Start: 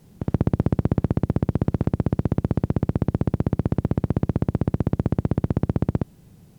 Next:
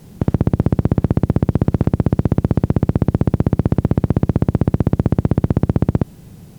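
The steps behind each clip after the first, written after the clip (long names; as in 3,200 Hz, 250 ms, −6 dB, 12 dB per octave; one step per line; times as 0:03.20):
boost into a limiter +11.5 dB
level −1 dB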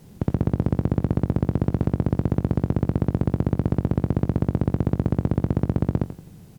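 repeating echo 86 ms, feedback 34%, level −11.5 dB
level −6.5 dB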